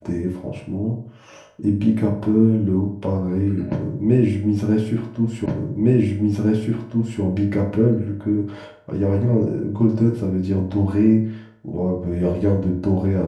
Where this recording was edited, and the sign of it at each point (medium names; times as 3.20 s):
5.46 s: repeat of the last 1.76 s